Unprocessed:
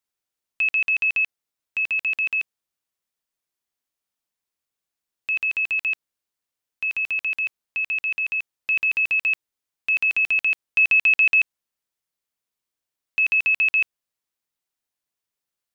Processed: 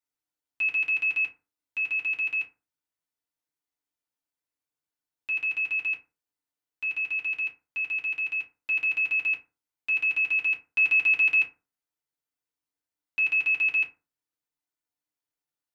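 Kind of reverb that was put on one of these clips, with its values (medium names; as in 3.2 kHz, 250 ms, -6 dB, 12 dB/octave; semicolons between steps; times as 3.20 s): FDN reverb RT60 0.31 s, low-frequency decay 1.1×, high-frequency decay 0.5×, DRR -3 dB; trim -10 dB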